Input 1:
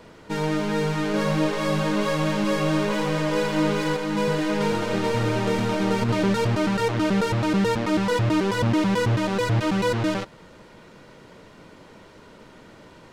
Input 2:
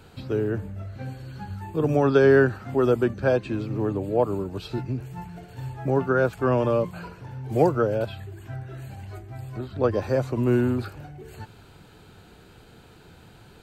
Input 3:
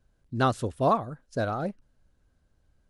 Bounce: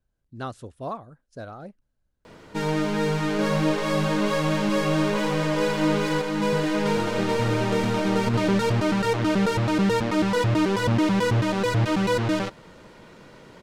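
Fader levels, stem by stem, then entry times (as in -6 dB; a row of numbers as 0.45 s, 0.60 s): 0.0 dB, mute, -9.5 dB; 2.25 s, mute, 0.00 s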